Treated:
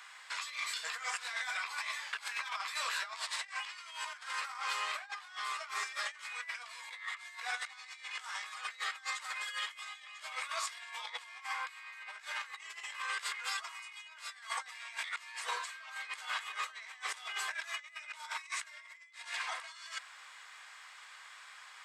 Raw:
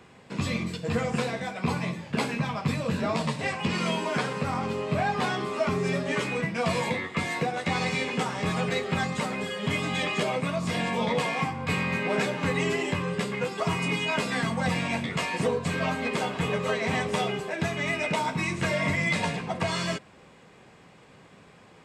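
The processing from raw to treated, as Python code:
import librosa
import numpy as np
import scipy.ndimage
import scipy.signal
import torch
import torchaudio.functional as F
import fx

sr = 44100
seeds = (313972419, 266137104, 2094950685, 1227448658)

y = scipy.signal.sosfilt(scipy.signal.butter(4, 1200.0, 'highpass', fs=sr, output='sos'), x)
y = fx.peak_eq(y, sr, hz=2600.0, db=-5.5, octaves=0.33)
y = fx.over_compress(y, sr, threshold_db=-42.0, ratio=-0.5)
y = y * 10.0 ** (1.0 / 20.0)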